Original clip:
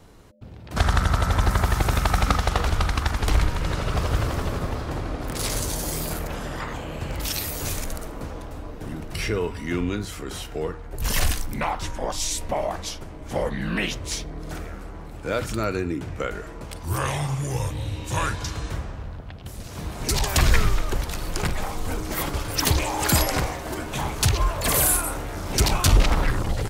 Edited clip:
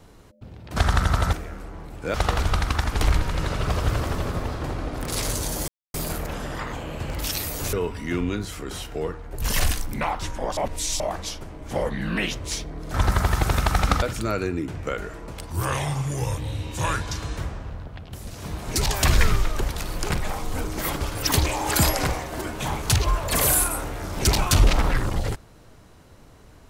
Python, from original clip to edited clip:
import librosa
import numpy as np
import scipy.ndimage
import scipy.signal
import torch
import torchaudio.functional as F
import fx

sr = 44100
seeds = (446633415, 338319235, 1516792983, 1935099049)

y = fx.edit(x, sr, fx.swap(start_s=1.33, length_s=1.08, other_s=14.54, other_length_s=0.81),
    fx.insert_silence(at_s=5.95, length_s=0.26),
    fx.cut(start_s=7.74, length_s=1.59),
    fx.reverse_span(start_s=12.17, length_s=0.43), tone=tone)